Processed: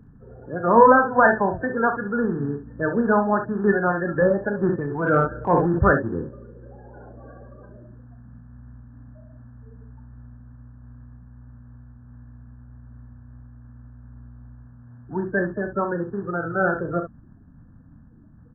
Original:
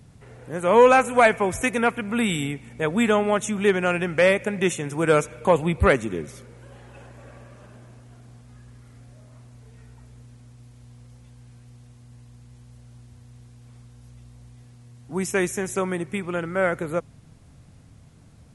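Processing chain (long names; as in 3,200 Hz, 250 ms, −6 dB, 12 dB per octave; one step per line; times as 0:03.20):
spectral magnitudes quantised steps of 30 dB
linear-phase brick-wall low-pass 1,800 Hz
ambience of single reflections 35 ms −9 dB, 49 ms −16.5 dB, 67 ms −10 dB
0:04.63–0:05.79: transient designer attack −5 dB, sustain +6 dB
level +1 dB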